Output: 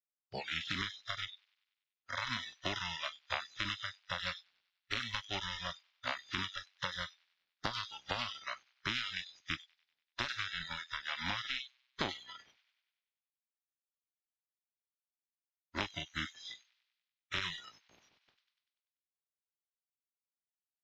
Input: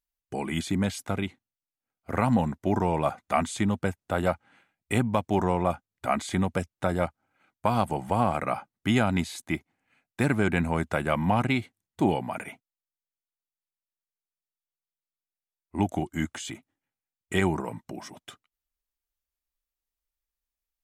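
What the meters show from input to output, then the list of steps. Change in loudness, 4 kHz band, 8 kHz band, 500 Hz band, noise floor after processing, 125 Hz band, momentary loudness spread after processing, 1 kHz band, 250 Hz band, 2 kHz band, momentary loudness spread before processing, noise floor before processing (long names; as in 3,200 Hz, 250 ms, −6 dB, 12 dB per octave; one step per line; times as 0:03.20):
−11.5 dB, +2.5 dB, −11.5 dB, −20.5 dB, below −85 dBFS, −20.5 dB, 8 LU, −14.5 dB, −23.0 dB, −5.0 dB, 13 LU, below −85 dBFS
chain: compressing power law on the bin magnitudes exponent 0.17
inverse Chebyshev low-pass filter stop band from 8,300 Hz, stop band 40 dB
downward compressor 8 to 1, threshold −34 dBFS, peak gain reduction 14.5 dB
delay with a high-pass on its return 97 ms, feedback 59%, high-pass 2,000 Hz, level −3.5 dB
noise reduction from a noise print of the clip's start 26 dB
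level +1.5 dB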